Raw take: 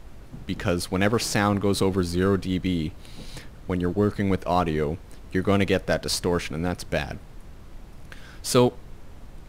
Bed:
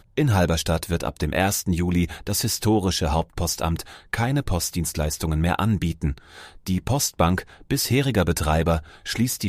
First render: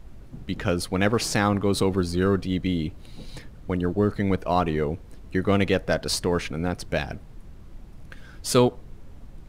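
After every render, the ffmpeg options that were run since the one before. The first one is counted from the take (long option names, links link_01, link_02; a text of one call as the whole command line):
ffmpeg -i in.wav -af "afftdn=noise_reduction=6:noise_floor=-45" out.wav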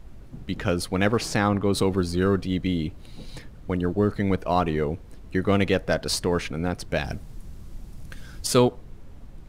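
ffmpeg -i in.wav -filter_complex "[0:a]asettb=1/sr,asplit=3[link_01][link_02][link_03];[link_01]atrim=end=1.174[link_04];[link_02]atrim=start=1.17:end=1.75,asetpts=PTS-STARTPTS,afade=type=in:duration=0.004:curve=qsin,afade=type=out:start_time=0.576:duration=0.004:curve=qsin,highshelf=frequency=4100:gain=-5.5[link_05];[link_03]atrim=start=1.746[link_06];[link_04][link_05]acrossfade=duration=0.004:curve1=hsin:curve2=qsin[link_07];[link_07][link_06]acrossfade=duration=0.004:curve1=qsin:curve2=hsin,asettb=1/sr,asplit=3[link_08][link_09][link_10];[link_08]atrim=end=7.044[link_11];[link_09]atrim=start=7.04:end=8.47,asetpts=PTS-STARTPTS,afade=type=in:duration=0.004:curve=qsin,afade=type=out:start_time=1.426:duration=0.004:curve=qsin,bass=frequency=250:gain=4,treble=frequency=4000:gain=9[link_12];[link_10]atrim=start=8.466[link_13];[link_11][link_12]acrossfade=duration=0.004:curve1=hsin:curve2=qsin[link_14];[link_14][link_13]acrossfade=duration=0.004:curve1=qsin:curve2=hsin" out.wav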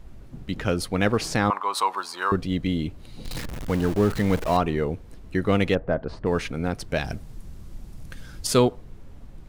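ffmpeg -i in.wav -filter_complex "[0:a]asettb=1/sr,asplit=3[link_01][link_02][link_03];[link_01]atrim=end=1.504[link_04];[link_02]atrim=start=1.5:end=2.32,asetpts=PTS-STARTPTS,afade=type=in:duration=0.004:curve=qsin,afade=type=out:start_time=0.816:duration=0.004:curve=qsin,highpass=frequency=980:width_type=q:width=5.7[link_05];[link_03]atrim=start=2.316[link_06];[link_04][link_05]acrossfade=duration=0.004:curve1=hsin:curve2=qsin[link_07];[link_07][link_06]acrossfade=duration=0.004:curve1=qsin:curve2=hsin,asettb=1/sr,asplit=3[link_08][link_09][link_10];[link_08]atrim=end=3.254[link_11];[link_09]atrim=start=3.25:end=4.57,asetpts=PTS-STARTPTS,afade=type=in:duration=0.004:curve=qsin,afade=type=out:start_time=1.316:duration=0.004:curve=qsin,aeval=exprs='val(0)+0.5*0.0376*sgn(val(0))':channel_layout=same[link_12];[link_10]atrim=start=4.566[link_13];[link_11][link_12]acrossfade=duration=0.004:curve1=hsin:curve2=qsin[link_14];[link_14][link_13]acrossfade=duration=0.004:curve1=qsin:curve2=hsin,asplit=3[link_15][link_16][link_17];[link_15]afade=type=out:start_time=5.74:duration=0.02[link_18];[link_16]lowpass=1200,afade=type=in:start_time=5.74:duration=0.02,afade=type=out:start_time=6.25:duration=0.02[link_19];[link_17]afade=type=in:start_time=6.25:duration=0.02[link_20];[link_18][link_19][link_20]amix=inputs=3:normalize=0" out.wav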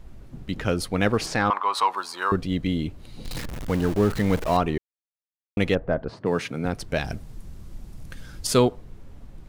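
ffmpeg -i in.wav -filter_complex "[0:a]asettb=1/sr,asplit=3[link_01][link_02][link_03];[link_01]atrim=end=1.264[link_04];[link_02]atrim=start=1.26:end=1.91,asetpts=PTS-STARTPTS,afade=type=in:duration=0.004:curve=qsin,afade=type=out:start_time=0.646:duration=0.004:curve=qsin,asplit=2[link_05][link_06];[link_06]highpass=frequency=720:poles=1,volume=9dB,asoftclip=type=tanh:threshold=-10.5dB[link_07];[link_05][link_07]amix=inputs=2:normalize=0,lowpass=frequency=2900:poles=1,volume=-6dB[link_08];[link_03]atrim=start=1.906[link_09];[link_04][link_08]acrossfade=duration=0.004:curve1=hsin:curve2=qsin[link_10];[link_10][link_09]acrossfade=duration=0.004:curve1=qsin:curve2=hsin,asettb=1/sr,asplit=3[link_11][link_12][link_13];[link_11]atrim=end=6.104[link_14];[link_12]atrim=start=6.1:end=6.65,asetpts=PTS-STARTPTS,afade=type=in:duration=0.004:curve=qsin,afade=type=out:start_time=0.546:duration=0.004:curve=qsin,highpass=frequency=110:width=0.5412,highpass=frequency=110:width=1.3066[link_15];[link_13]atrim=start=6.646[link_16];[link_14][link_15]acrossfade=duration=0.004:curve1=hsin:curve2=qsin[link_17];[link_17][link_16]acrossfade=duration=0.004:curve1=qsin:curve2=hsin,asplit=3[link_18][link_19][link_20];[link_18]atrim=end=4.78,asetpts=PTS-STARTPTS,afade=type=out:start_time=4.776:duration=0.004:curve=hsin[link_21];[link_19]atrim=start=4.78:end=5.57,asetpts=PTS-STARTPTS,volume=0[link_22];[link_20]atrim=start=5.57,asetpts=PTS-STARTPTS,afade=type=in:duration=0.004:curve=hsin[link_23];[link_21][link_22][link_23]concat=n=3:v=0:a=1" out.wav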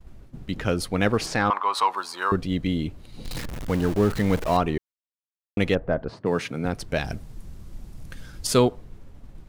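ffmpeg -i in.wav -af "agate=range=-33dB:threshold=-38dB:ratio=3:detection=peak" out.wav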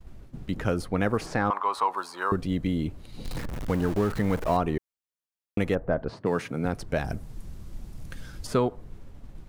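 ffmpeg -i in.wav -filter_complex "[0:a]acrossover=split=830|1800|6500[link_01][link_02][link_03][link_04];[link_01]acompressor=threshold=-22dB:ratio=4[link_05];[link_02]acompressor=threshold=-28dB:ratio=4[link_06];[link_03]acompressor=threshold=-48dB:ratio=4[link_07];[link_04]acompressor=threshold=-49dB:ratio=4[link_08];[link_05][link_06][link_07][link_08]amix=inputs=4:normalize=0" out.wav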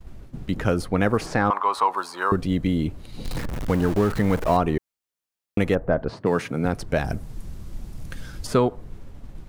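ffmpeg -i in.wav -af "volume=4.5dB" out.wav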